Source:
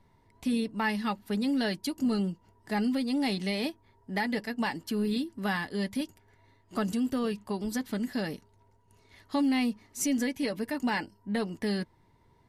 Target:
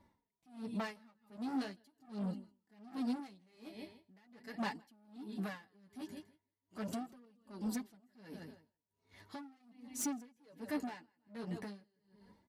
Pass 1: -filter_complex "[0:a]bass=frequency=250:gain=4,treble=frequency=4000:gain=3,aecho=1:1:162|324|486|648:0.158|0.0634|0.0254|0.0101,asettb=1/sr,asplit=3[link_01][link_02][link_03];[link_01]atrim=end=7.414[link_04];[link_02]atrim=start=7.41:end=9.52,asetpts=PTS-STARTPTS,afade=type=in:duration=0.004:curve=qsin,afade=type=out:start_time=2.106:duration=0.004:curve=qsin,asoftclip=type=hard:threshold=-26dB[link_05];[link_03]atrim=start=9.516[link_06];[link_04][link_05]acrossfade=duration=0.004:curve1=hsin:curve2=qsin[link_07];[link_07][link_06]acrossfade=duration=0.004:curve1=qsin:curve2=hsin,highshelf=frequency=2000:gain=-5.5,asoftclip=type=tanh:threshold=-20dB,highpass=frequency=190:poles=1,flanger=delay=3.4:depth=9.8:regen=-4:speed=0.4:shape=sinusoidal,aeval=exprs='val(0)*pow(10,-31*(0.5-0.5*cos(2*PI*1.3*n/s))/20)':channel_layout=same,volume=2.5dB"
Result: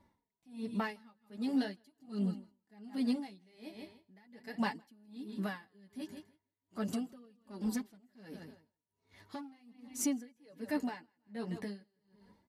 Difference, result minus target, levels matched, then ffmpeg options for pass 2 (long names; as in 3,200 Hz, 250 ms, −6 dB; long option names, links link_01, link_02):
soft clipping: distortion −12 dB
-filter_complex "[0:a]bass=frequency=250:gain=4,treble=frequency=4000:gain=3,aecho=1:1:162|324|486|648:0.158|0.0634|0.0254|0.0101,asettb=1/sr,asplit=3[link_01][link_02][link_03];[link_01]atrim=end=7.414[link_04];[link_02]atrim=start=7.41:end=9.52,asetpts=PTS-STARTPTS,afade=type=in:duration=0.004:curve=qsin,afade=type=out:start_time=2.106:duration=0.004:curve=qsin,asoftclip=type=hard:threshold=-26dB[link_05];[link_03]atrim=start=9.516[link_06];[link_04][link_05]acrossfade=duration=0.004:curve1=hsin:curve2=qsin[link_07];[link_07][link_06]acrossfade=duration=0.004:curve1=qsin:curve2=hsin,highshelf=frequency=2000:gain=-5.5,asoftclip=type=tanh:threshold=-30.5dB,highpass=frequency=190:poles=1,flanger=delay=3.4:depth=9.8:regen=-4:speed=0.4:shape=sinusoidal,aeval=exprs='val(0)*pow(10,-31*(0.5-0.5*cos(2*PI*1.3*n/s))/20)':channel_layout=same,volume=2.5dB"